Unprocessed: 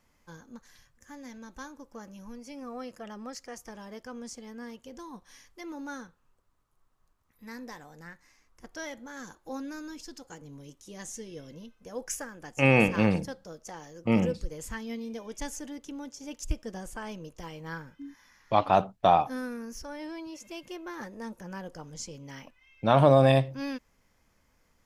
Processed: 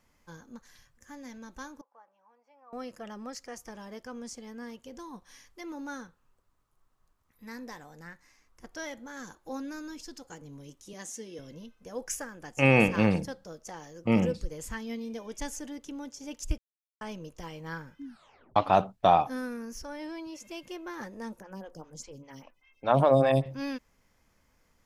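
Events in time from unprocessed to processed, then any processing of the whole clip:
1.81–2.73 s: ladder band-pass 950 Hz, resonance 50%
10.93–11.39 s: high-pass 190 Hz 24 dB/octave
16.58–17.01 s: mute
18.04 s: tape stop 0.52 s
21.40–23.46 s: lamp-driven phase shifter 5 Hz

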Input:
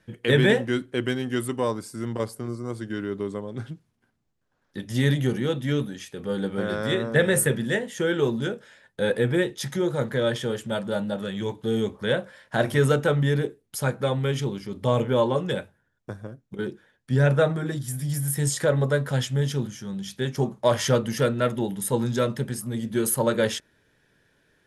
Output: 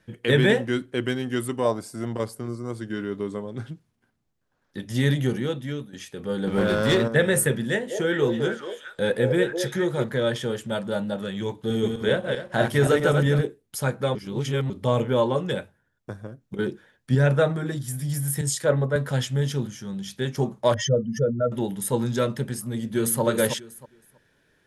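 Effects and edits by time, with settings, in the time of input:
1.65–2.15 s: peaking EQ 670 Hz +12.5 dB 0.4 oct
2.87–3.46 s: doubling 24 ms -11 dB
5.35–5.93 s: fade out linear, to -13.5 dB
6.47–7.08 s: waveshaping leveller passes 2
7.64–10.04 s: repeats whose band climbs or falls 204 ms, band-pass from 560 Hz, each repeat 1.4 oct, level -1 dB
11.57–13.41 s: backward echo that repeats 130 ms, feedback 41%, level -3.5 dB
14.15–14.70 s: reverse
16.41–17.15 s: gain +3.5 dB
18.41–18.96 s: three bands expanded up and down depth 100%
20.74–21.52 s: spectral contrast enhancement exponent 2.4
22.63–23.21 s: echo throw 320 ms, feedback 20%, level -6 dB

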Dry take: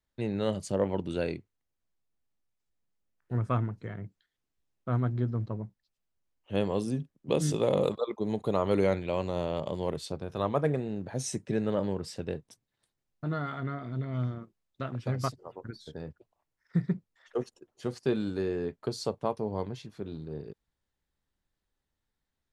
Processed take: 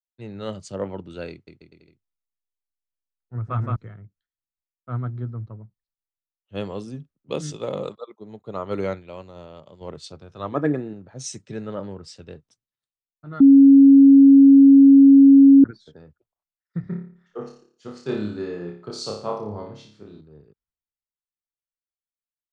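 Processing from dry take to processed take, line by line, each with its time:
1.30–3.76 s: bouncing-ball echo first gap 170 ms, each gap 0.8×, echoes 5, each echo -2 dB
7.41–9.81 s: upward expansion, over -45 dBFS
10.52–10.93 s: small resonant body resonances 300/1700 Hz, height 12 dB
13.40–15.64 s: bleep 275 Hz -11 dBFS
16.80–20.21 s: flutter echo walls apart 4.9 m, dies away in 0.61 s
whole clip: low-pass 7.6 kHz 24 dB/octave; peaking EQ 1.3 kHz +7.5 dB 0.28 oct; three bands expanded up and down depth 70%; trim -1.5 dB

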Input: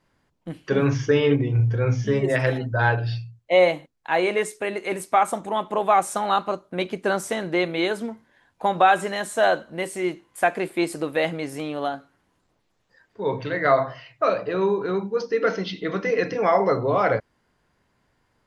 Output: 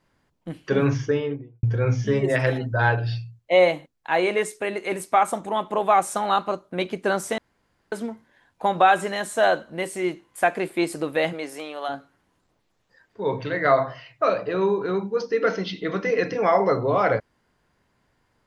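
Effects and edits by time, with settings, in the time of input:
0.81–1.63 s: studio fade out
7.38–7.92 s: room tone
11.32–11.88 s: high-pass 270 Hz -> 710 Hz

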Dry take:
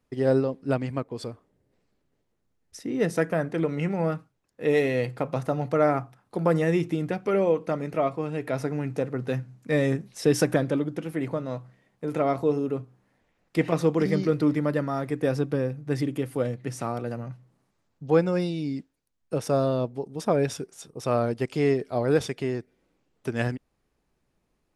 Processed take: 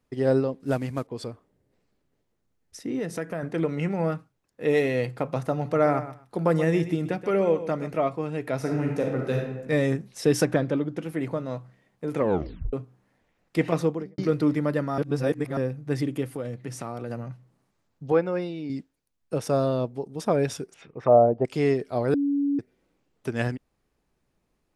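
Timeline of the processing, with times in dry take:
0.60–1.07 s: CVSD coder 64 kbps
2.99–3.43 s: compression 2:1, threshold -31 dBFS
5.53–7.92 s: feedback delay 127 ms, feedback 16%, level -13 dB
8.57–9.56 s: reverb throw, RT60 1 s, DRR 0 dB
10.45–10.97 s: distance through air 69 m
12.15 s: tape stop 0.58 s
13.75–14.18 s: studio fade out
14.98–15.57 s: reverse
16.26–17.10 s: compression 3:1, threshold -29 dBFS
18.12–18.70 s: tone controls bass -9 dB, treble -15 dB
20.74–21.45 s: touch-sensitive low-pass 680–2800 Hz down, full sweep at -25 dBFS
22.14–22.59 s: bleep 283 Hz -21 dBFS

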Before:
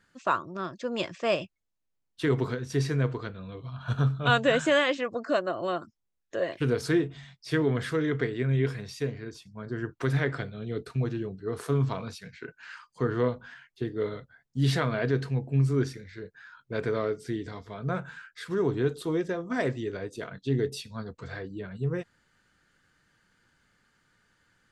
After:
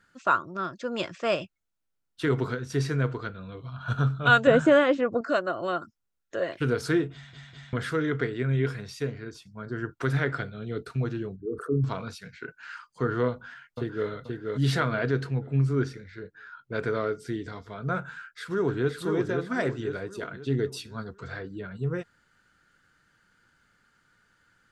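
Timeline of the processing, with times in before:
4.47–5.21 s: tilt shelf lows +8 dB, about 1.2 kHz
7.13 s: stutter in place 0.20 s, 3 plays
11.36–11.84 s: resonances exaggerated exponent 3
13.29–14.09 s: echo throw 480 ms, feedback 35%, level -3 dB
15.27–16.74 s: treble shelf 7.6 kHz -11.5 dB
18.15–18.95 s: echo throw 520 ms, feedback 45%, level -4.5 dB
whole clip: peaking EQ 1.4 kHz +8.5 dB 0.21 oct

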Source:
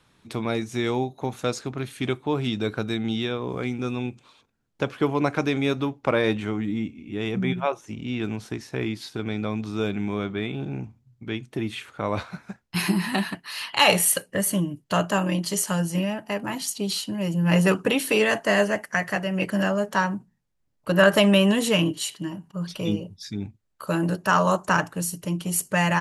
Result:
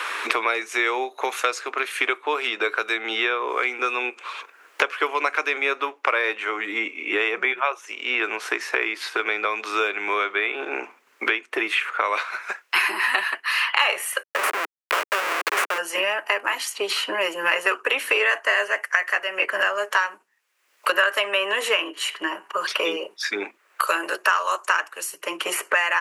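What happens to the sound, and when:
14.23–15.78 s: Schmitt trigger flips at -23.5 dBFS
whole clip: steep high-pass 390 Hz 36 dB/octave; high-order bell 1.7 kHz +10.5 dB; three bands compressed up and down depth 100%; trim -1.5 dB

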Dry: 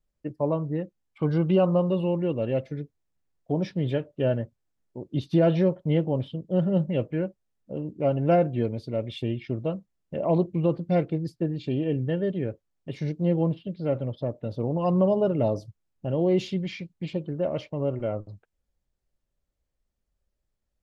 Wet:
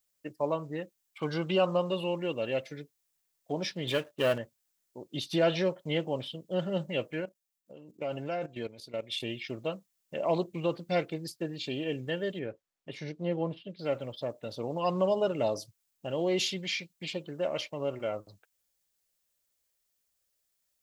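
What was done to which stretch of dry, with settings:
3.87–4.38 s: waveshaping leveller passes 1
7.20–9.20 s: level held to a coarse grid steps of 14 dB
12.39–13.79 s: low-pass 1.8 kHz 6 dB/octave
whole clip: tilt EQ +4.5 dB/octave

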